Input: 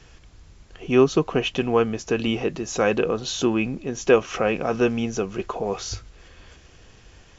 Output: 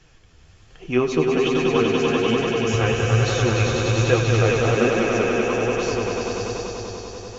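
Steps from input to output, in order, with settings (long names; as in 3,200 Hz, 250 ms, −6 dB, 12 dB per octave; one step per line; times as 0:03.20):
on a send: echo that builds up and dies away 97 ms, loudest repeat 5, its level −4.5 dB
on the sum: dynamic equaliser 2,100 Hz, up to +4 dB, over −36 dBFS, Q 1.4
flanger 1.2 Hz, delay 5.2 ms, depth 8.5 ms, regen +33%
0:02.73–0:04.75: low shelf with overshoot 150 Hz +9 dB, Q 3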